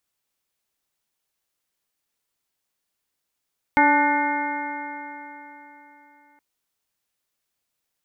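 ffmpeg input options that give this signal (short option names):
-f lavfi -i "aevalsrc='0.1*pow(10,-3*t/3.66)*sin(2*PI*288.33*t)+0.0447*pow(10,-3*t/3.66)*sin(2*PI*578.64*t)+0.178*pow(10,-3*t/3.66)*sin(2*PI*872.9*t)+0.0224*pow(10,-3*t/3.66)*sin(2*PI*1173.01*t)+0.0794*pow(10,-3*t/3.66)*sin(2*PI*1480.82*t)+0.0501*pow(10,-3*t/3.66)*sin(2*PI*1798.12*t)+0.106*pow(10,-3*t/3.66)*sin(2*PI*2126.57*t)':d=2.62:s=44100"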